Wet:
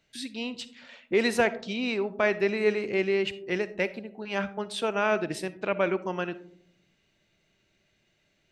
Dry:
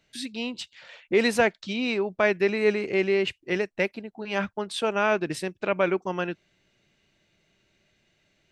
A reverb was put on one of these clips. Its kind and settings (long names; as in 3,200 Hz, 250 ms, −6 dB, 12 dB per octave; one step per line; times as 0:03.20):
comb and all-pass reverb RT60 0.69 s, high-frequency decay 0.25×, pre-delay 15 ms, DRR 14.5 dB
level −2.5 dB